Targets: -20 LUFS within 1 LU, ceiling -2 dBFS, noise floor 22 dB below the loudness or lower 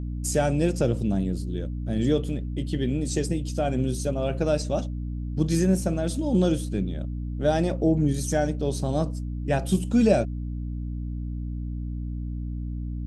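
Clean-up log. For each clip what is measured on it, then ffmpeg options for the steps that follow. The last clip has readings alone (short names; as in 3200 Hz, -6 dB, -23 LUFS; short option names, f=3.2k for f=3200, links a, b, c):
hum 60 Hz; harmonics up to 300 Hz; hum level -28 dBFS; loudness -26.5 LUFS; peak -8.0 dBFS; loudness target -20.0 LUFS
-> -af "bandreject=f=60:t=h:w=6,bandreject=f=120:t=h:w=6,bandreject=f=180:t=h:w=6,bandreject=f=240:t=h:w=6,bandreject=f=300:t=h:w=6"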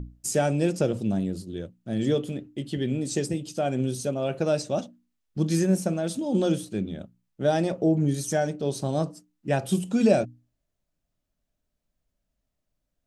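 hum none; loudness -26.5 LUFS; peak -7.5 dBFS; loudness target -20.0 LUFS
-> -af "volume=6.5dB,alimiter=limit=-2dB:level=0:latency=1"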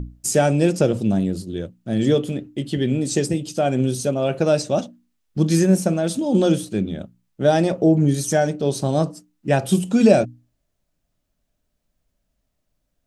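loudness -20.0 LUFS; peak -2.0 dBFS; noise floor -74 dBFS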